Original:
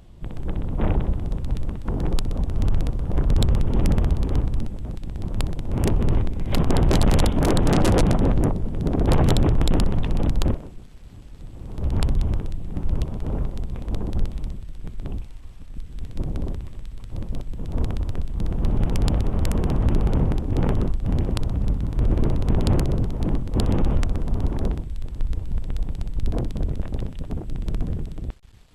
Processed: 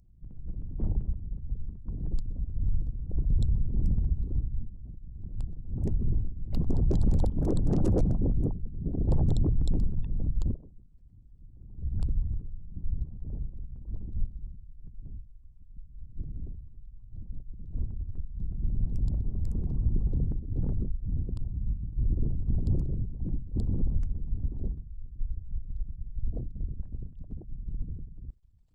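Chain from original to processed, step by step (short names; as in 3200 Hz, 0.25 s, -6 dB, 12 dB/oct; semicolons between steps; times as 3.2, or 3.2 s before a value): formant sharpening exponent 2; resonant high shelf 4600 Hz +9 dB, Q 1.5; upward expander 1.5:1, over -27 dBFS; gain -5 dB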